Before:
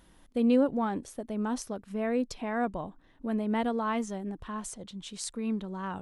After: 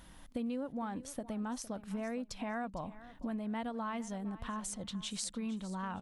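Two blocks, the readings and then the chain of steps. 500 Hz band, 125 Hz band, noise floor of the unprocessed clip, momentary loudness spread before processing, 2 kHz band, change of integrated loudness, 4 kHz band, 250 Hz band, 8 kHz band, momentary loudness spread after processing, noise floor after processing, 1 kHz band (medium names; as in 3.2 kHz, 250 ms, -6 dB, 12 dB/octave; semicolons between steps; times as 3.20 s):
-11.0 dB, -4.0 dB, -60 dBFS, 14 LU, -6.0 dB, -8.0 dB, -1.5 dB, -8.5 dB, -1.5 dB, 4 LU, -56 dBFS, -7.0 dB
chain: peaking EQ 390 Hz -8.5 dB 0.62 oct; compression 6:1, threshold -41 dBFS, peak gain reduction 17.5 dB; feedback delay 459 ms, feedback 24%, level -16.5 dB; trim +4.5 dB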